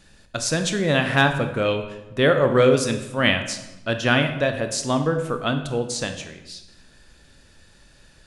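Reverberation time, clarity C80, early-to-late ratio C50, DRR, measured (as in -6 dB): 1.0 s, 11.0 dB, 9.0 dB, 6.5 dB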